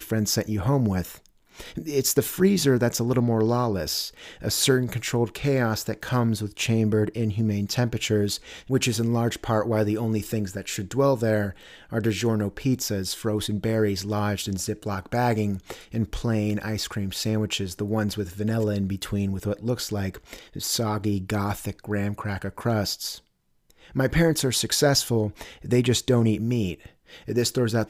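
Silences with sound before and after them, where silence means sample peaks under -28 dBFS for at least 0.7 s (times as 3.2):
23.14–23.96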